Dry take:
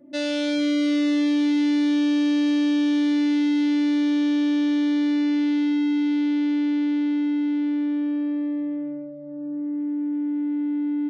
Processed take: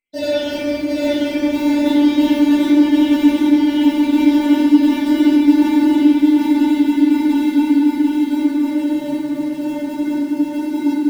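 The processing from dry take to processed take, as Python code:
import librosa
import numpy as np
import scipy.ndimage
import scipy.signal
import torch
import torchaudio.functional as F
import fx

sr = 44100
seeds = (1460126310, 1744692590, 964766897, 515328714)

p1 = fx.spec_dropout(x, sr, seeds[0], share_pct=78)
p2 = fx.dynamic_eq(p1, sr, hz=770.0, q=1.9, threshold_db=-48.0, ratio=4.0, max_db=6)
p3 = fx.sample_hold(p2, sr, seeds[1], rate_hz=1200.0, jitter_pct=0)
p4 = p2 + (p3 * librosa.db_to_amplitude(-11.0))
p5 = fx.echo_feedback(p4, sr, ms=747, feedback_pct=53, wet_db=-3.0)
p6 = fx.room_shoebox(p5, sr, seeds[2], volume_m3=120.0, walls='hard', distance_m=1.6)
p7 = fx.echo_crushed(p6, sr, ms=223, feedback_pct=55, bits=5, wet_db=-14.0)
y = p7 * librosa.db_to_amplitude(-2.5)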